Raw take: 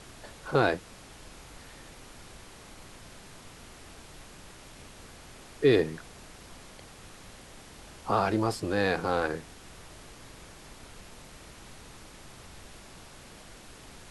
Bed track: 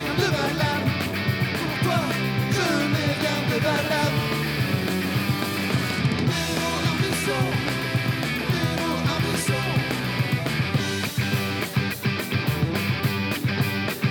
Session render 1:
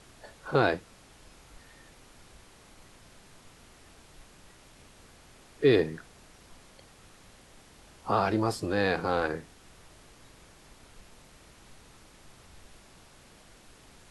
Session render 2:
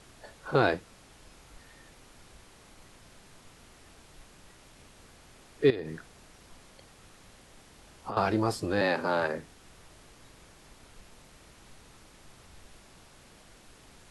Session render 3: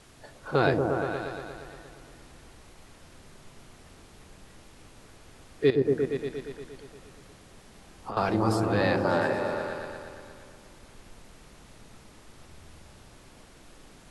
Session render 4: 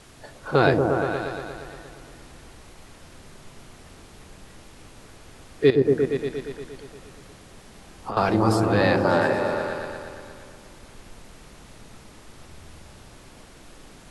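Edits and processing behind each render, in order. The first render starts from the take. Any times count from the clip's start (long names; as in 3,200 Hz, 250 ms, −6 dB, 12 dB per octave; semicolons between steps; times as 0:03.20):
noise reduction from a noise print 6 dB
0:05.70–0:08.17: downward compressor 12 to 1, threshold −31 dBFS; 0:08.81–0:09.38: frequency shifter +78 Hz
echo whose low-pass opens from repeat to repeat 117 ms, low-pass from 400 Hz, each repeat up 1 octave, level 0 dB
level +5 dB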